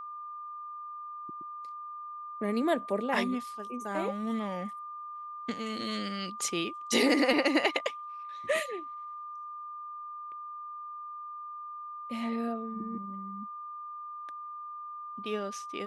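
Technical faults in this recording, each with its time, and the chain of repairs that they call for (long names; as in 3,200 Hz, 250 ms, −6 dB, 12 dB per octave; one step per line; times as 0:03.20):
whistle 1,200 Hz −39 dBFS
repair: notch filter 1,200 Hz, Q 30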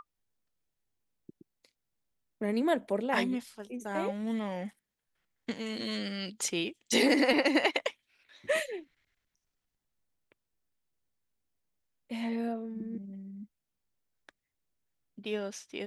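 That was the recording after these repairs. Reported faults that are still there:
none of them is left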